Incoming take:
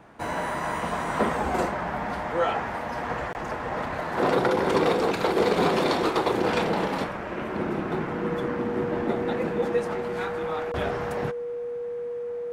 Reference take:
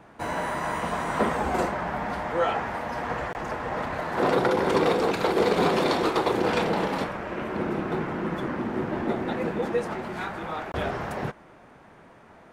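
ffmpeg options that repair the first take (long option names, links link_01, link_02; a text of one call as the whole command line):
ffmpeg -i in.wav -af "bandreject=frequency=480:width=30" out.wav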